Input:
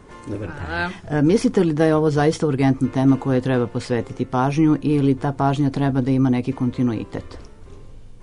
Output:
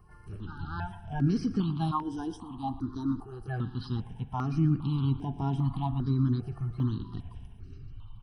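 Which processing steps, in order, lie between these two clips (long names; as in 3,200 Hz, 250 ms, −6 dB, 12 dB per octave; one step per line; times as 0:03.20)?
spectral magnitudes quantised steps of 30 dB
phaser with its sweep stopped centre 2,000 Hz, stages 6
comb filter 1 ms, depth 36%
spring reverb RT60 2.4 s, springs 43 ms, chirp 75 ms, DRR 14 dB
dynamic equaliser 2,600 Hz, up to −7 dB, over −49 dBFS, Q 2
0:01.91–0:03.48: phaser with its sweep stopped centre 570 Hz, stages 6
on a send: single-tap delay 118 ms −17 dB
on the sum: step-sequenced phaser 2.5 Hz 980–4,300 Hz
level −6 dB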